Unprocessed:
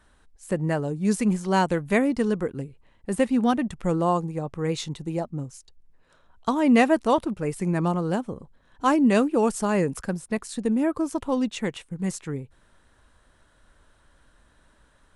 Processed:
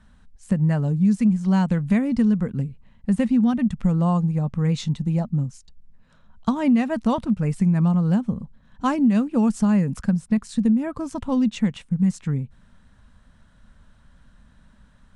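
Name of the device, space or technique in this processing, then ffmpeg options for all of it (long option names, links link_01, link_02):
jukebox: -af "lowpass=7800,lowshelf=frequency=270:width_type=q:width=3:gain=7.5,acompressor=threshold=-16dB:ratio=5"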